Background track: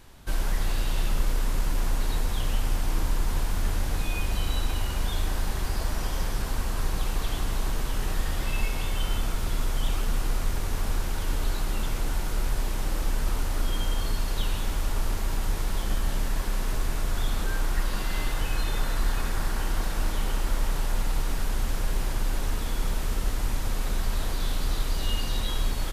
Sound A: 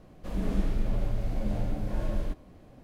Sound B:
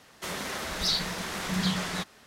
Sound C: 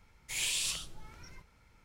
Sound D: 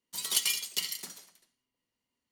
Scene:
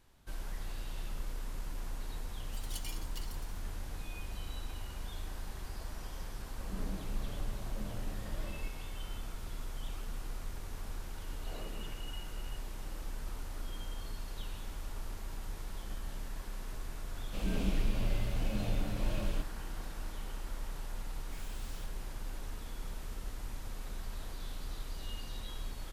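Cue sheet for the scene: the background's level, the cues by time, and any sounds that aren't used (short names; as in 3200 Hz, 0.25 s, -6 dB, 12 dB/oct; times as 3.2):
background track -14.5 dB
2.39 add D -17.5 dB
6.35 add A -11.5 dB
11.17 add C -9 dB + inverted band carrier 2900 Hz
17.09 add A -4 dB + resonant high shelf 2100 Hz +6 dB, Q 3
21.03 add C -16.5 dB + Schmitt trigger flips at -47.5 dBFS
not used: B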